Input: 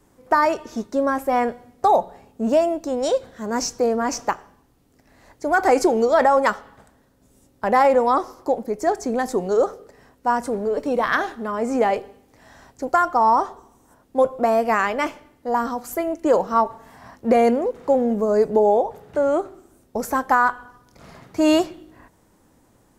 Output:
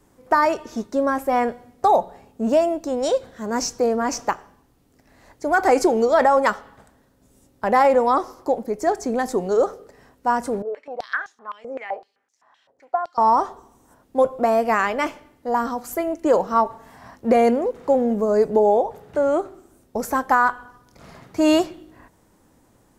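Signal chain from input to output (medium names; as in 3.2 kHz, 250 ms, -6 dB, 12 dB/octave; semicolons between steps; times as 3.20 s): 10.62–13.18 s: step-sequenced band-pass 7.8 Hz 530–6400 Hz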